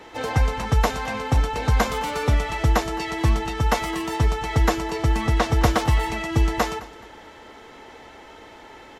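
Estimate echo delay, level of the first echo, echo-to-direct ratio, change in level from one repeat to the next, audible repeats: 213 ms, −19.5 dB, −19.0 dB, −9.5 dB, 2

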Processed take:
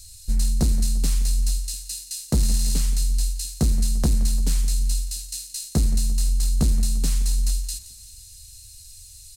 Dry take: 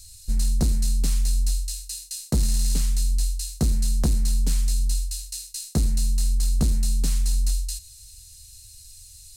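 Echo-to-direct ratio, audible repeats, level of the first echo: −14.5 dB, 4, −16.0 dB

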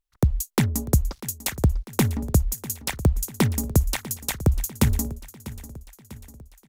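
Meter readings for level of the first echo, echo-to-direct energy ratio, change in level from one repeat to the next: −16.5 dB, −15.0 dB, −5.0 dB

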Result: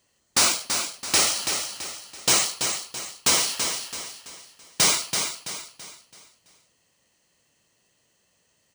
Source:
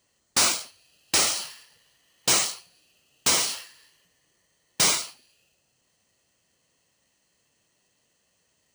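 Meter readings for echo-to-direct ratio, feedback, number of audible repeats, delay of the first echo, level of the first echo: −6.0 dB, 39%, 4, 332 ms, −6.5 dB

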